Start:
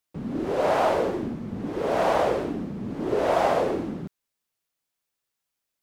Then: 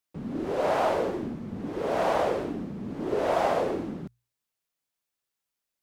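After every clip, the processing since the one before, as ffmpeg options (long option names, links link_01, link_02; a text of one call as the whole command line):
ffmpeg -i in.wav -af "bandreject=frequency=60:width_type=h:width=6,bandreject=frequency=120:width_type=h:width=6,volume=-3dB" out.wav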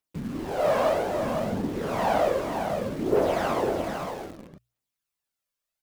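ffmpeg -i in.wav -filter_complex "[0:a]aphaser=in_gain=1:out_gain=1:delay=1.9:decay=0.52:speed=0.63:type=triangular,aecho=1:1:505:0.501,asplit=2[link_01][link_02];[link_02]acrusher=bits=5:mix=0:aa=0.000001,volume=-7dB[link_03];[link_01][link_03]amix=inputs=2:normalize=0,volume=-3.5dB" out.wav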